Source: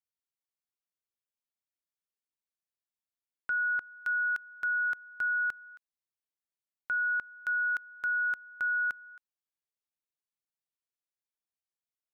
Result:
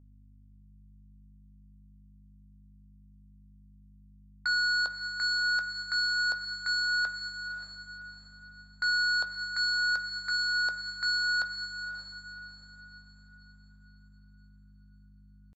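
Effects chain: octave divider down 2 oct, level 0 dB; low-pass 1.4 kHz 6 dB/octave; gate -44 dBFS, range -26 dB; inverse Chebyshev high-pass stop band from 290 Hz, stop band 40 dB; tempo 0.78×; sine folder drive 5 dB, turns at -29 dBFS; hum 50 Hz, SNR 22 dB; echo that smears into a reverb 555 ms, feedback 45%, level -9 dB; on a send at -8 dB: reverberation RT60 1.0 s, pre-delay 9 ms; on the sum: trim +4 dB

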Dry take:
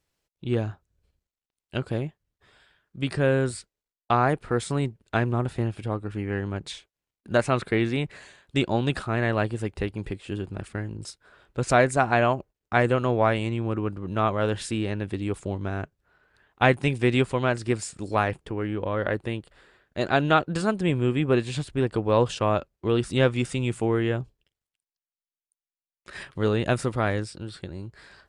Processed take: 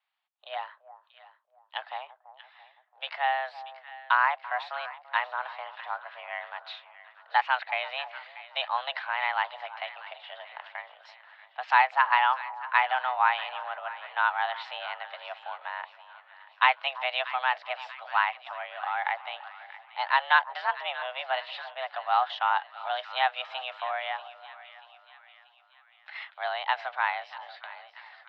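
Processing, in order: mistuned SSB +260 Hz 530–3600 Hz; two-band feedback delay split 1.2 kHz, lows 337 ms, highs 636 ms, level -15 dB

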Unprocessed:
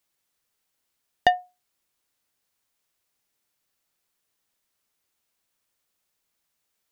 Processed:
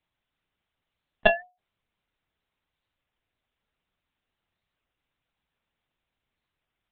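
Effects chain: bass shelf 190 Hz +8 dB; monotone LPC vocoder at 8 kHz 220 Hz; warped record 33 1/3 rpm, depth 100 cents

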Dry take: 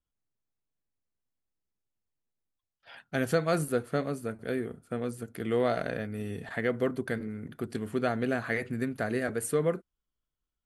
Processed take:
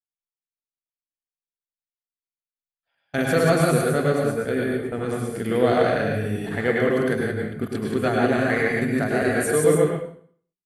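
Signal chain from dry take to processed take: chunks repeated in reverse 106 ms, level -2 dB; gate -39 dBFS, range -31 dB; plate-style reverb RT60 0.52 s, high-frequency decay 0.95×, pre-delay 90 ms, DRR -0.5 dB; trim +4.5 dB

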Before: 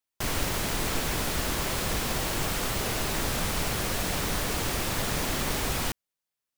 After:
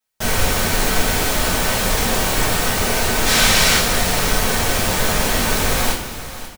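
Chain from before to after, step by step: 3.26–3.78 s: peaking EQ 3.9 kHz +9.5 dB 3 oct; feedback delay 536 ms, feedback 29%, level -14.5 dB; reverberation, pre-delay 3 ms, DRR -9.5 dB; trim +1 dB

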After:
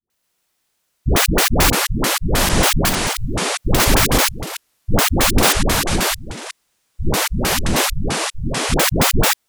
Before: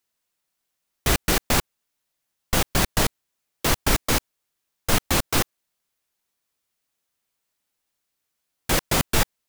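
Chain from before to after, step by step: 2.79–3.70 s: compressor with a negative ratio -25 dBFS, ratio -0.5; phase dispersion highs, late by 102 ms, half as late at 500 Hz; ever faster or slower copies 85 ms, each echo -6 st, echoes 2; trim +7 dB

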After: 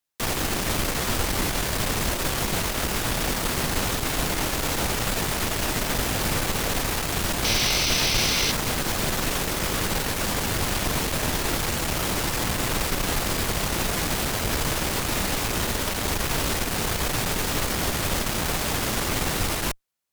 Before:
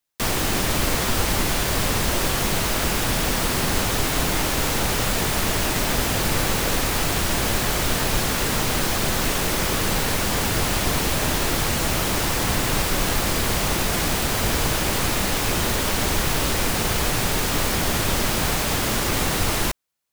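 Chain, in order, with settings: valve stage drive 16 dB, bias 0.6; painted sound noise, 7.44–8.52 s, 2–6.3 kHz -25 dBFS

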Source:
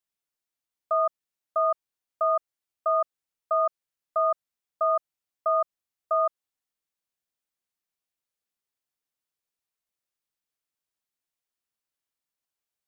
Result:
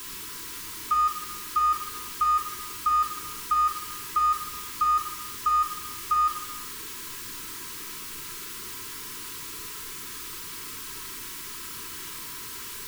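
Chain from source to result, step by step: jump at every zero crossing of -32.5 dBFS; Chebyshev band-stop 440–1000 Hz, order 3; peaking EQ 680 Hz +11 dB 1 oct; simulated room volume 1900 m³, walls furnished, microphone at 2.9 m

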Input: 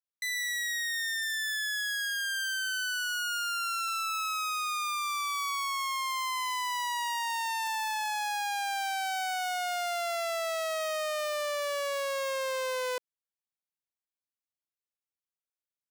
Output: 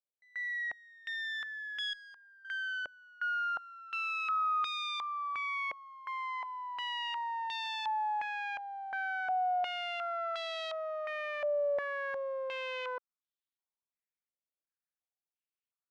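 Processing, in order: 1.93–2.45 s: valve stage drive 45 dB, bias 0.2; step-sequenced low-pass 2.8 Hz 580–3600 Hz; trim -8.5 dB

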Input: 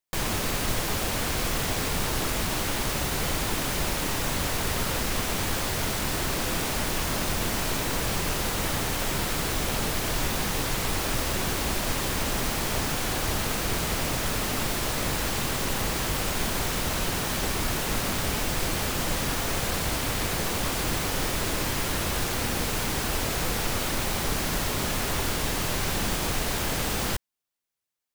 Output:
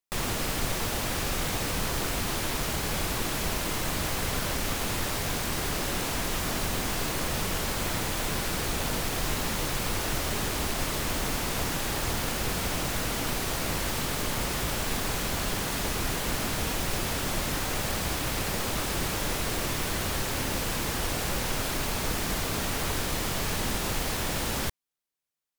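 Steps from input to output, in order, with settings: tape speed +10%; trim -2 dB

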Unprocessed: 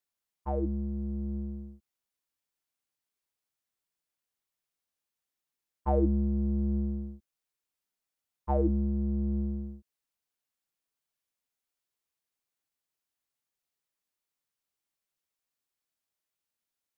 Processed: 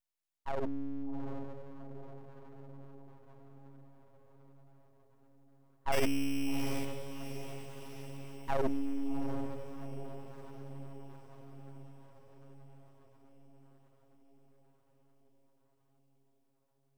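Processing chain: 5.92–6.85 s: sorted samples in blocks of 16 samples; echo that smears into a reverb 762 ms, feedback 63%, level -10 dB; full-wave rectifier; trim -2 dB

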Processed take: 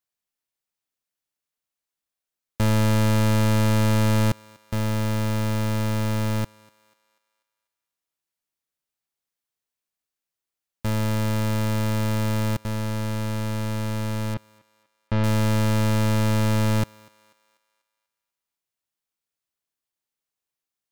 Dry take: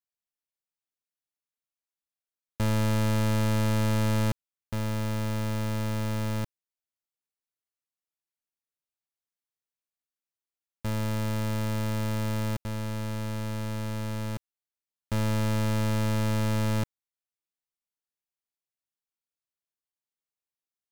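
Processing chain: 14.34–15.24 s: Bessel low-pass 3.2 kHz, order 4; thinning echo 245 ms, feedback 46%, high-pass 470 Hz, level -22.5 dB; trim +5.5 dB

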